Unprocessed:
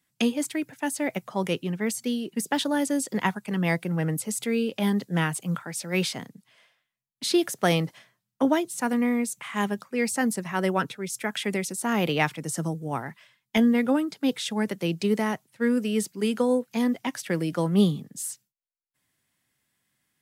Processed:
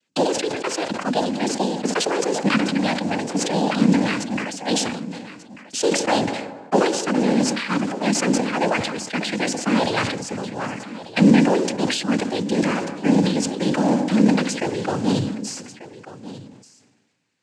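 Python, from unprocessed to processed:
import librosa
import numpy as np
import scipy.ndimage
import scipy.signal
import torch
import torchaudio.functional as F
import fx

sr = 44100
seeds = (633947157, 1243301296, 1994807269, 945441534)

p1 = fx.speed_glide(x, sr, from_pct=131, to_pct=101)
p2 = fx.peak_eq(p1, sr, hz=190.0, db=-5.5, octaves=0.87)
p3 = 10.0 ** (-21.0 / 20.0) * (np.abs((p2 / 10.0 ** (-21.0 / 20.0) + 3.0) % 4.0 - 2.0) - 1.0)
p4 = p2 + (p3 * librosa.db_to_amplitude(-9.0))
p5 = fx.mod_noise(p4, sr, seeds[0], snr_db=15)
p6 = fx.small_body(p5, sr, hz=(260.0, 640.0, 2400.0), ring_ms=50, db=8)
p7 = fx.noise_vocoder(p6, sr, seeds[1], bands=8)
p8 = p7 + 10.0 ** (-15.5 / 20.0) * np.pad(p7, (int(1190 * sr / 1000.0), 0))[:len(p7)]
p9 = fx.rev_plate(p8, sr, seeds[2], rt60_s=2.0, hf_ratio=0.5, predelay_ms=0, drr_db=19.0)
y = fx.sustainer(p9, sr, db_per_s=47.0)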